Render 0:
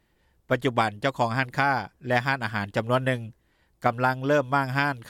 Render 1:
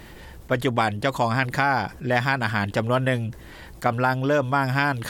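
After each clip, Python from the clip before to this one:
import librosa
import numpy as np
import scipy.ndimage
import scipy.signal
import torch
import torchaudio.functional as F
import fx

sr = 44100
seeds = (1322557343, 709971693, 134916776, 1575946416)

y = fx.env_flatten(x, sr, amount_pct=50)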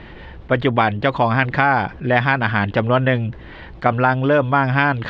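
y = scipy.signal.sosfilt(scipy.signal.butter(4, 3500.0, 'lowpass', fs=sr, output='sos'), x)
y = F.gain(torch.from_numpy(y), 5.5).numpy()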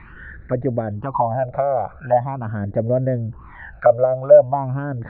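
y = fx.phaser_stages(x, sr, stages=12, low_hz=280.0, high_hz=1000.0, hz=0.43, feedback_pct=45)
y = fx.envelope_lowpass(y, sr, base_hz=610.0, top_hz=1900.0, q=5.0, full_db=-16.0, direction='down')
y = F.gain(torch.from_numpy(y), -4.5).numpy()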